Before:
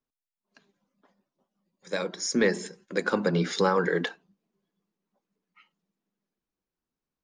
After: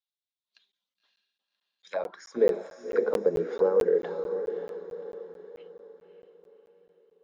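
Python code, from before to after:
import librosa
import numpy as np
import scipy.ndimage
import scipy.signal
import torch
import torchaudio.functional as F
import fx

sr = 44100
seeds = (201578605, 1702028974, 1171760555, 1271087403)

p1 = fx.rider(x, sr, range_db=10, speed_s=0.5)
p2 = x + (p1 * 10.0 ** (1.0 / 20.0))
p3 = fx.auto_wah(p2, sr, base_hz=460.0, top_hz=3700.0, q=4.7, full_db=-16.0, direction='down')
p4 = fx.echo_diffused(p3, sr, ms=564, feedback_pct=44, wet_db=-8.0)
y = fx.buffer_crackle(p4, sr, first_s=0.72, period_s=0.22, block=512, kind='zero')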